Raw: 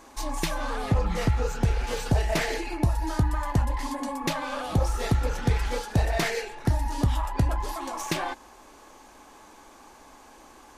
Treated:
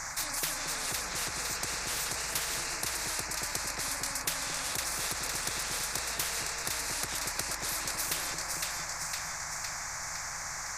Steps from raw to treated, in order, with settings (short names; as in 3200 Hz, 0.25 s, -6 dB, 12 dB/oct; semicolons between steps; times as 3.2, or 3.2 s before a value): EQ curve 150 Hz 0 dB, 230 Hz -27 dB, 390 Hz -30 dB, 1700 Hz +15 dB, 3000 Hz -24 dB, 6100 Hz +7 dB, 9700 Hz -9 dB; compressor, threshold -23 dBFS, peak gain reduction 6.5 dB; split-band echo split 880 Hz, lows 0.227 s, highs 0.509 s, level -7 dB; spectral compressor 10:1; gain -2 dB